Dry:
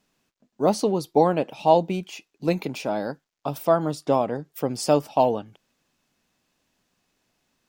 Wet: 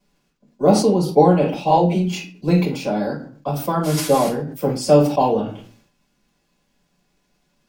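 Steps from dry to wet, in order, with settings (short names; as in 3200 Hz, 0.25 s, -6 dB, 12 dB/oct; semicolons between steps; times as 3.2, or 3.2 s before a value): 1.7–2.29 dispersion lows, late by 62 ms, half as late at 430 Hz; 3.83–4.27 band noise 870–13000 Hz -35 dBFS; reverb RT60 0.40 s, pre-delay 3 ms, DRR -7 dB; sustainer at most 87 dB/s; gain -7 dB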